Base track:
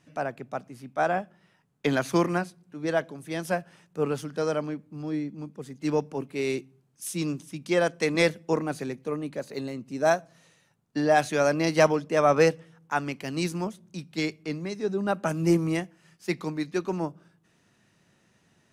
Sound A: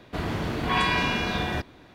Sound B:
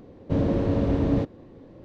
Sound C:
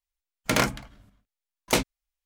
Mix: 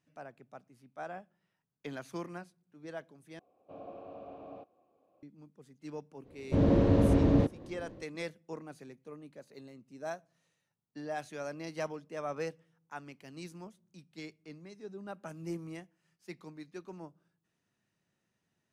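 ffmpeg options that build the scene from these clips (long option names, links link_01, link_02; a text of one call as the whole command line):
ffmpeg -i bed.wav -i cue0.wav -i cue1.wav -filter_complex "[2:a]asplit=2[link_01][link_02];[0:a]volume=-17dB[link_03];[link_01]asplit=3[link_04][link_05][link_06];[link_04]bandpass=frequency=730:width_type=q:width=8,volume=0dB[link_07];[link_05]bandpass=frequency=1090:width_type=q:width=8,volume=-6dB[link_08];[link_06]bandpass=frequency=2440:width_type=q:width=8,volume=-9dB[link_09];[link_07][link_08][link_09]amix=inputs=3:normalize=0[link_10];[link_02]dynaudnorm=framelen=130:gausssize=5:maxgain=11.5dB[link_11];[link_03]asplit=2[link_12][link_13];[link_12]atrim=end=3.394[link_14];[link_10]atrim=end=1.84,asetpts=PTS-STARTPTS,volume=-7dB[link_15];[link_13]atrim=start=5.226[link_16];[link_11]atrim=end=1.84,asetpts=PTS-STARTPTS,volume=-10dB,afade=type=in:duration=0.05,afade=type=out:start_time=1.79:duration=0.05,adelay=6220[link_17];[link_14][link_15]acrossfade=duration=0.004:curve1=hsin:curve2=hsin[link_18];[link_18][link_16]acrossfade=duration=0.004:curve1=hsin:curve2=hsin[link_19];[link_19][link_17]amix=inputs=2:normalize=0" out.wav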